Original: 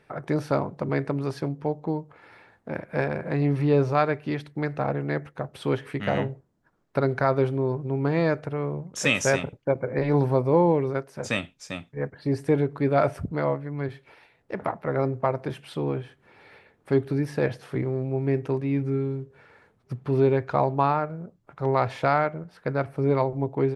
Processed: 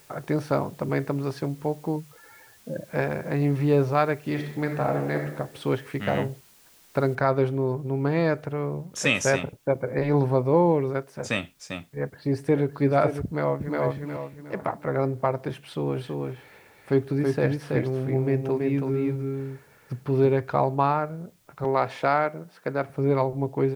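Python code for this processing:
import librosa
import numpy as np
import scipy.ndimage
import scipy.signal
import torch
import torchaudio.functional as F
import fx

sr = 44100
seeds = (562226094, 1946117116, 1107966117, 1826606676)

y = fx.spec_expand(x, sr, power=2.6, at=(1.96, 2.88))
y = fx.reverb_throw(y, sr, start_s=4.2, length_s=1.0, rt60_s=0.93, drr_db=3.5)
y = fx.noise_floor_step(y, sr, seeds[0], at_s=7.15, before_db=-56, after_db=-66, tilt_db=0.0)
y = fx.echo_throw(y, sr, start_s=11.9, length_s=0.75, ms=560, feedback_pct=10, wet_db=-9.0)
y = fx.echo_throw(y, sr, start_s=13.24, length_s=0.56, ms=360, feedback_pct=35, wet_db=-0.5)
y = fx.echo_single(y, sr, ms=327, db=-3.5, at=(15.91, 20.39), fade=0.02)
y = fx.highpass(y, sr, hz=180.0, slope=12, at=(21.64, 22.9))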